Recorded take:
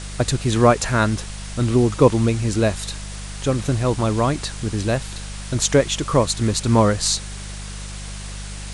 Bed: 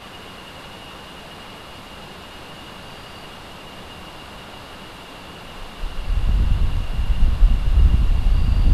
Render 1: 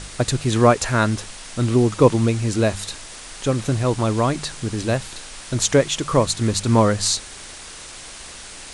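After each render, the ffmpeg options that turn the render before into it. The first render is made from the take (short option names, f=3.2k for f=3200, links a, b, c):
-af "bandreject=f=50:t=h:w=4,bandreject=f=100:t=h:w=4,bandreject=f=150:t=h:w=4,bandreject=f=200:t=h:w=4"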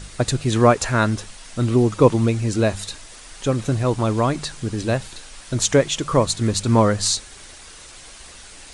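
-af "afftdn=nr=6:nf=-38"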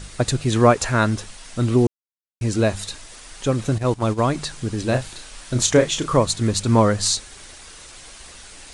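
-filter_complex "[0:a]asettb=1/sr,asplit=3[a][b][c];[a]atrim=end=3.784[d];[b]atrim=start=3.78:end=4.21,asetpts=PTS-STARTPTS,afade=t=in:d=0.004:c=qsin,afade=t=out:st=0.426:d=0.004:c=qsin,agate=range=-11dB:threshold=-22dB:ratio=16:release=100:detection=peak[e];[c]atrim=start=4.206[f];[d][e]acrossfade=d=0.004:c1=hsin:c2=qsin[g];[g][f]acrossfade=d=0.004:c1=qsin:c2=hsin,asettb=1/sr,asplit=3[h][i][j];[h]atrim=end=4.854[k];[i]atrim=start=4.85:end=6.17,asetpts=PTS-STARTPTS,afade=t=in:d=0.004:c=qsin,afade=t=out:st=1.316:d=0.004:c=qsin,asplit=2[l][m];[m]adelay=32,volume=-7dB[n];[l][n]amix=inputs=2:normalize=0,atrim=end_sample=58212[o];[j]atrim=start=6.166[p];[k][o]acrossfade=d=0.004:c1=hsin:c2=qsin[q];[q][p]acrossfade=d=0.004:c1=qsin:c2=hsin,asplit=3[r][s][t];[r]atrim=end=1.87,asetpts=PTS-STARTPTS,afade=t=out:st=1.866:d=0.004:c=hsin[u];[s]atrim=start=1.87:end=2.41,asetpts=PTS-STARTPTS,volume=0[v];[t]atrim=start=2.41,asetpts=PTS-STARTPTS,afade=t=in:d=0.004:c=hsin[w];[u][v][w]concat=n=3:v=0:a=1"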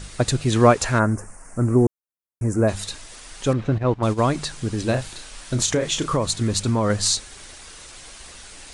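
-filter_complex "[0:a]asplit=3[a][b][c];[a]afade=t=out:st=0.98:d=0.02[d];[b]asuperstop=centerf=3600:order=4:qfactor=0.58,afade=t=in:st=0.98:d=0.02,afade=t=out:st=2.67:d=0.02[e];[c]afade=t=in:st=2.67:d=0.02[f];[d][e][f]amix=inputs=3:normalize=0,asettb=1/sr,asplit=3[g][h][i];[g]atrim=end=3.534[j];[h]atrim=start=3.53:end=4.03,asetpts=PTS-STARTPTS,afade=t=in:d=0.004:c=qsin,afade=t=out:st=0.496:d=0.004:c=qsin,lowpass=2.5k[k];[i]atrim=start=4.026[l];[j][k]acrossfade=d=0.004:c1=hsin:c2=qsin[m];[m][l]acrossfade=d=0.004:c1=qsin:c2=hsin,asettb=1/sr,asplit=3[n][o][p];[n]atrim=end=4.914[q];[o]atrim=start=4.91:end=6.9,asetpts=PTS-STARTPTS,afade=t=in:d=0.004:c=qsin,afade=t=out:st=1.986:d=0.004:c=qsin,acompressor=threshold=-16dB:ratio=6:attack=3.2:release=140:knee=1:detection=peak[r];[p]atrim=start=6.896[s];[q][r]acrossfade=d=0.004:c1=hsin:c2=qsin[t];[t][s]acrossfade=d=0.004:c1=qsin:c2=hsin"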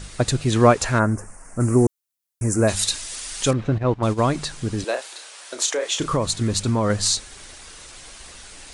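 -filter_complex "[0:a]asettb=1/sr,asplit=3[a][b][c];[a]atrim=end=1.604[d];[b]atrim=start=1.6:end=3.51,asetpts=PTS-STARTPTS,afade=t=in:d=0.004:c=qsin,afade=t=out:st=1.906:d=0.004:c=qsin,highshelf=f=2.4k:g=12[e];[c]atrim=start=3.506[f];[d][e]acrossfade=d=0.004:c1=hsin:c2=qsin[g];[g][f]acrossfade=d=0.004:c1=qsin:c2=hsin,asettb=1/sr,asplit=3[h][i][j];[h]atrim=end=4.844[k];[i]atrim=start=4.84:end=6,asetpts=PTS-STARTPTS,afade=t=in:d=0.004:c=qsin,afade=t=out:st=1.156:d=0.004:c=qsin,highpass=f=420:w=0.5412,highpass=f=420:w=1.3066[l];[j]atrim=start=5.996[m];[k][l]acrossfade=d=0.004:c1=hsin:c2=qsin[n];[n][m]acrossfade=d=0.004:c1=qsin:c2=hsin"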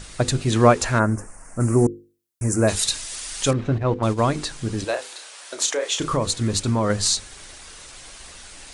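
-af "bandreject=f=50:t=h:w=6,bandreject=f=100:t=h:w=6,bandreject=f=150:t=h:w=6,bandreject=f=200:t=h:w=6,bandreject=f=250:t=h:w=6,bandreject=f=300:t=h:w=6,bandreject=f=350:t=h:w=6,bandreject=f=400:t=h:w=6,bandreject=f=450:t=h:w=6,bandreject=f=500:t=h:w=6"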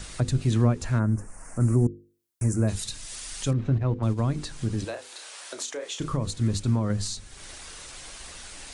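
-filter_complex "[0:a]acrossover=split=240[a][b];[b]acompressor=threshold=-38dB:ratio=2.5[c];[a][c]amix=inputs=2:normalize=0"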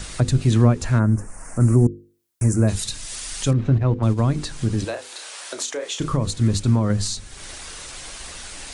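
-af "volume=6dB"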